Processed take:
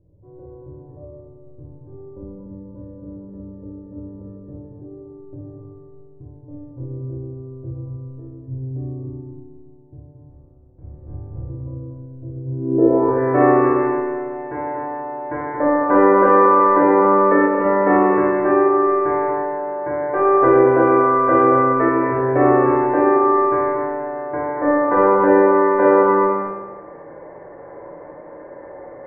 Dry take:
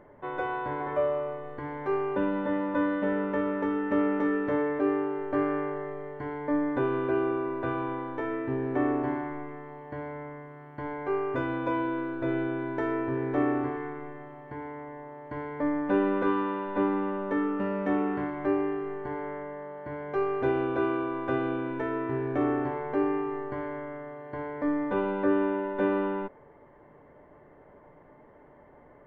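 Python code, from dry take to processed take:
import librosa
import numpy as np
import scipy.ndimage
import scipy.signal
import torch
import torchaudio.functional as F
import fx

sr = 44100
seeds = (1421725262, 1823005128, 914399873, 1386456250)

p1 = fx.spec_clip(x, sr, under_db=28, at=(10.28, 11.48), fade=0.02)
p2 = scipy.signal.sosfilt(scipy.signal.butter(2, 2500.0, 'lowpass', fs=sr, output='sos'), p1)
p3 = fx.peak_eq(p2, sr, hz=550.0, db=11.0, octaves=1.5)
p4 = fx.rev_fdn(p3, sr, rt60_s=1.3, lf_ratio=0.85, hf_ratio=0.6, size_ms=18.0, drr_db=-5.0)
p5 = fx.filter_sweep_lowpass(p4, sr, from_hz=100.0, to_hz=1900.0, start_s=12.44, end_s=13.25, q=2.1)
p6 = p5 + fx.echo_single(p5, sr, ms=229, db=-6.0, dry=0)
y = fx.env_flatten(p6, sr, amount_pct=50, at=(16.47, 17.46))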